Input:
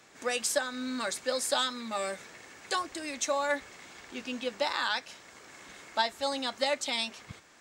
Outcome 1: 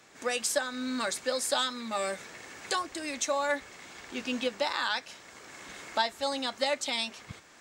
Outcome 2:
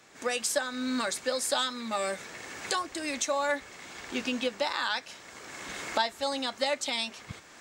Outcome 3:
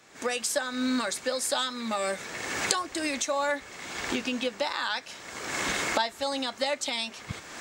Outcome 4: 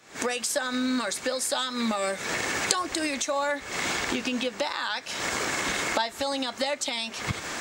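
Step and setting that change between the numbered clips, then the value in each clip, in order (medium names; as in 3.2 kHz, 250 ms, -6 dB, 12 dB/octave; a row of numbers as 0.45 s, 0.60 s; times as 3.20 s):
recorder AGC, rising by: 5.3 dB/s, 13 dB/s, 32 dB/s, 88 dB/s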